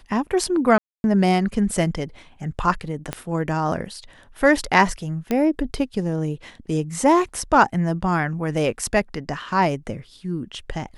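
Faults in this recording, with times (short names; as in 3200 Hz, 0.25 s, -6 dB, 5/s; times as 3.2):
0.78–1.04 gap 0.261 s
3.13 pop -11 dBFS
5.31 pop -10 dBFS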